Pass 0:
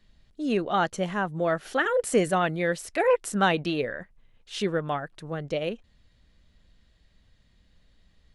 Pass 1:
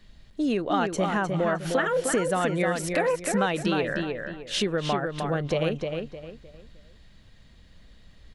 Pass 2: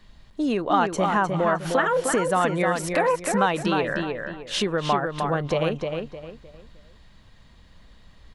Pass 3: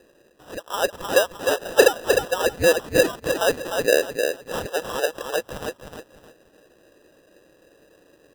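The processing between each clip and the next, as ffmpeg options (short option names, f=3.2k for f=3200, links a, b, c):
-filter_complex "[0:a]acompressor=threshold=-31dB:ratio=6,asplit=2[a][b];[b]adelay=307,lowpass=f=3.8k:p=1,volume=-4.5dB,asplit=2[c][d];[d]adelay=307,lowpass=f=3.8k:p=1,volume=0.32,asplit=2[e][f];[f]adelay=307,lowpass=f=3.8k:p=1,volume=0.32,asplit=2[g][h];[h]adelay=307,lowpass=f=3.8k:p=1,volume=0.32[i];[c][e][g][i]amix=inputs=4:normalize=0[j];[a][j]amix=inputs=2:normalize=0,volume=8dB"
-af "equalizer=f=1k:t=o:w=0.73:g=8,volume=1dB"
-af "highpass=f=1.7k:t=q:w=16,acrusher=samples=20:mix=1:aa=0.000001,volume=-5.5dB"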